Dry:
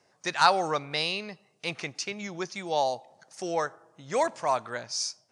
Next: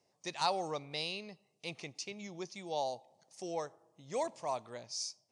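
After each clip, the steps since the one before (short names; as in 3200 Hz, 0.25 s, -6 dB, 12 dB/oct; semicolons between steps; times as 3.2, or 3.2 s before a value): bell 1500 Hz -14 dB 0.67 oct; gain -8 dB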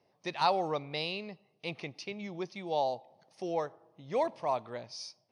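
running mean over 6 samples; gain +5.5 dB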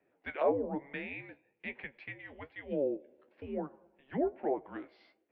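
treble ducked by the level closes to 940 Hz, closed at -27.5 dBFS; flange 1.1 Hz, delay 8.5 ms, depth 5.7 ms, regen +47%; mistuned SSB -280 Hz 590–2900 Hz; gain +5.5 dB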